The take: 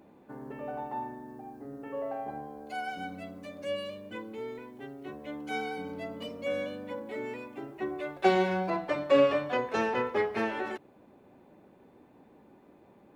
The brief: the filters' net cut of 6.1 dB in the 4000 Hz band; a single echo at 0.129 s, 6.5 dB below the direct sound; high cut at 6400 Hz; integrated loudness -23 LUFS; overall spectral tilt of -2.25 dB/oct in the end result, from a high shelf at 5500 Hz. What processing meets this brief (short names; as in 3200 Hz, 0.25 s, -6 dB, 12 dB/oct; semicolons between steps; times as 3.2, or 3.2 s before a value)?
LPF 6400 Hz; bell 4000 Hz -7.5 dB; high shelf 5500 Hz -4.5 dB; echo 0.129 s -6.5 dB; gain +8.5 dB